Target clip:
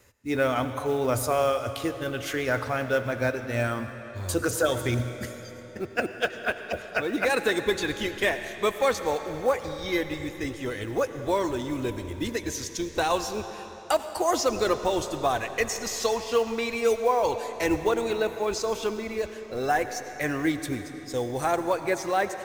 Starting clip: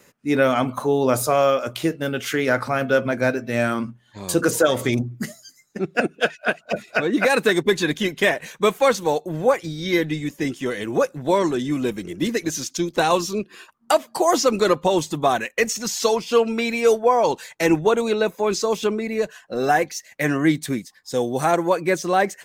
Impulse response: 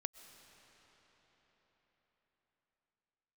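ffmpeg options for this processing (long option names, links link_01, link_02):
-filter_complex "[0:a]lowshelf=frequency=120:width_type=q:width=3:gain=10.5,acrusher=bits=7:mode=log:mix=0:aa=0.000001[link_01];[1:a]atrim=start_sample=2205,asetrate=61740,aresample=44100[link_02];[link_01][link_02]afir=irnorm=-1:irlink=0"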